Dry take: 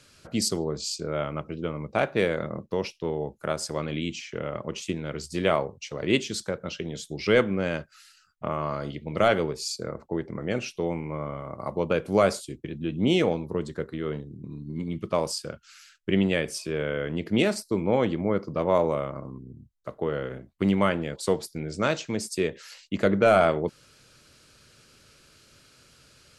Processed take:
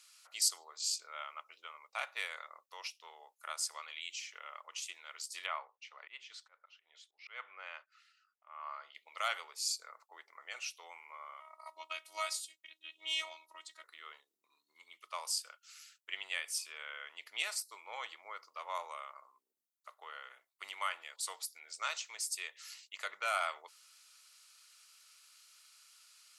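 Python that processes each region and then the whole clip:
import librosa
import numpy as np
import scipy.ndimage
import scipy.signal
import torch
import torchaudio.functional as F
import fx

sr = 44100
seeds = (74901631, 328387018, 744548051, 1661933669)

y = fx.chain(x, sr, fx.lowpass(hz=2300.0, slope=12),
    fx.low_shelf(hz=270.0, db=-9.5),
    fx.auto_swell(attack_ms=252.0), at=(5.46, 8.95))
y = fx.chain(y, sr, fx.peak_eq(hz=3400.0, db=4.5, octaves=1.6),
    fx.robotise(hz=318.0), at=(11.4, 13.84))
y = scipy.signal.sosfilt(scipy.signal.butter(4, 1000.0, 'highpass', fs=sr, output='sos'), y)
y = fx.high_shelf(y, sr, hz=6900.0, db=11.0)
y = fx.notch(y, sr, hz=1600.0, q=7.5)
y = F.gain(torch.from_numpy(y), -7.5).numpy()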